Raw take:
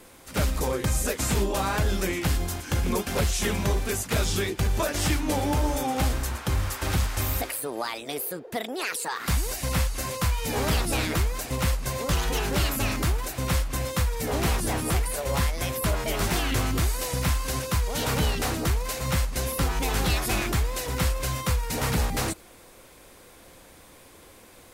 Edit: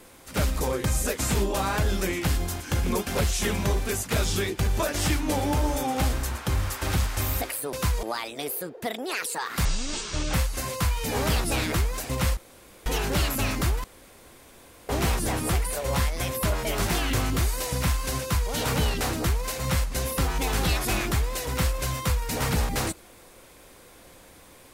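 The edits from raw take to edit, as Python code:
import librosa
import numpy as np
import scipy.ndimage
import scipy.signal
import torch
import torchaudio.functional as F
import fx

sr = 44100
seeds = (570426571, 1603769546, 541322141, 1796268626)

y = fx.edit(x, sr, fx.speed_span(start_s=9.35, length_s=0.4, speed=0.58),
    fx.room_tone_fill(start_s=11.78, length_s=0.49),
    fx.room_tone_fill(start_s=13.25, length_s=1.05),
    fx.duplicate(start_s=17.62, length_s=0.3, to_s=7.73), tone=tone)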